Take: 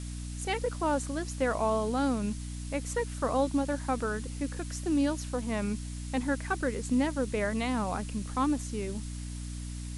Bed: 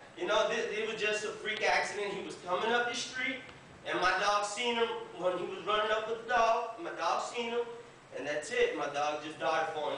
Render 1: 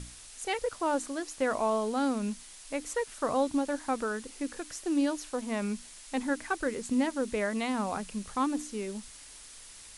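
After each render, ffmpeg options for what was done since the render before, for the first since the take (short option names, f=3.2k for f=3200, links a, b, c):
-af "bandreject=f=60:t=h:w=6,bandreject=f=120:t=h:w=6,bandreject=f=180:t=h:w=6,bandreject=f=240:t=h:w=6,bandreject=f=300:t=h:w=6"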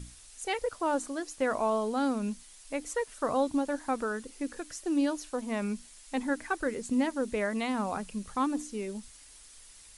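-af "afftdn=nr=6:nf=-50"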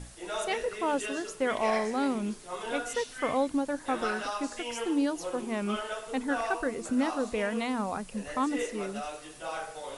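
-filter_complex "[1:a]volume=-5.5dB[a];[0:a][a]amix=inputs=2:normalize=0"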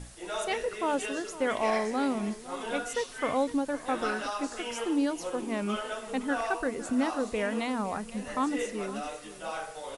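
-af "aecho=1:1:509:0.158"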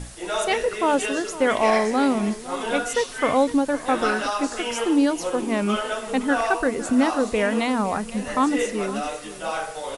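-af "volume=8.5dB"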